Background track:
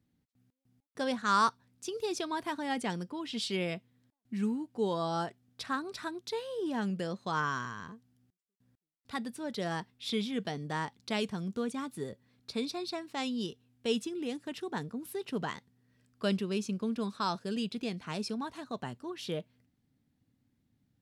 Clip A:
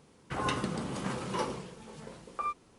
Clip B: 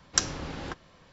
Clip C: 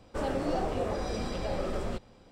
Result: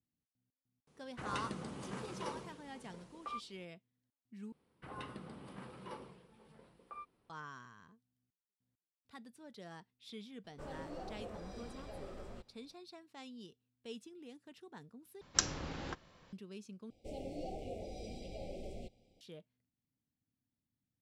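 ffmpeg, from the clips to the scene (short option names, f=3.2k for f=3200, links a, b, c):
-filter_complex "[1:a]asplit=2[a][b];[3:a]asplit=2[c][d];[0:a]volume=-16.5dB[e];[b]equalizer=f=6.6k:t=o:w=0.57:g=-15[f];[d]asuperstop=centerf=1300:order=20:qfactor=1[g];[e]asplit=4[h][i][j][k];[h]atrim=end=4.524[l];[f]atrim=end=2.78,asetpts=PTS-STARTPTS,volume=-15dB[m];[i]atrim=start=7.296:end=15.214[n];[2:a]atrim=end=1.12,asetpts=PTS-STARTPTS,volume=-6dB[o];[j]atrim=start=16.326:end=16.904[p];[g]atrim=end=2.31,asetpts=PTS-STARTPTS,volume=-13dB[q];[k]atrim=start=19.206[r];[a]atrim=end=2.78,asetpts=PTS-STARTPTS,volume=-9.5dB,afade=t=in:d=0.004:c=hsin,afade=t=out:st=2.776:d=0.004:c=hsin,adelay=870[s];[c]atrim=end=2.31,asetpts=PTS-STARTPTS,volume=-16dB,afade=t=in:d=0.004:c=hsin,afade=t=out:st=2.306:d=0.004:c=hsin,adelay=10440[t];[l][m]acrossfade=d=0.004:c1=hsin:c2=hsin[u];[u][n]acrossfade=d=0.004:c1=hsin:c2=hsin[v];[v][o]acrossfade=d=0.004:c1=hsin:c2=hsin[w];[w][p]acrossfade=d=0.004:c1=hsin:c2=hsin[x];[x][q]acrossfade=d=0.004:c1=hsin:c2=hsin[y];[y][r]acrossfade=d=0.004:c1=hsin:c2=hsin[z];[z][s][t]amix=inputs=3:normalize=0"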